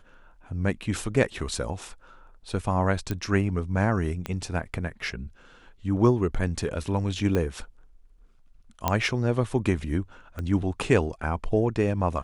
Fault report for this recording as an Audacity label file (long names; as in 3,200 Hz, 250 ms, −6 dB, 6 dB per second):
3.110000	3.110000	click −15 dBFS
4.260000	4.260000	click −16 dBFS
7.350000	7.350000	click −14 dBFS
8.880000	8.880000	click −8 dBFS
10.390000	10.390000	click −21 dBFS